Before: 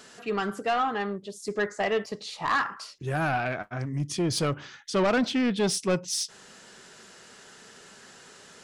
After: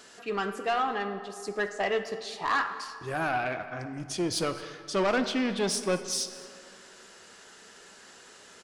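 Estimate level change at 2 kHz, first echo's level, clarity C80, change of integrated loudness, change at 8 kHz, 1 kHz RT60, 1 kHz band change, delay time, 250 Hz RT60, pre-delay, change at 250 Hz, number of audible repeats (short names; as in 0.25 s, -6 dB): -1.0 dB, -20.5 dB, 11.5 dB, -2.0 dB, -1.0 dB, 2.4 s, -1.0 dB, 0.22 s, 2.2 s, 3 ms, -4.0 dB, 1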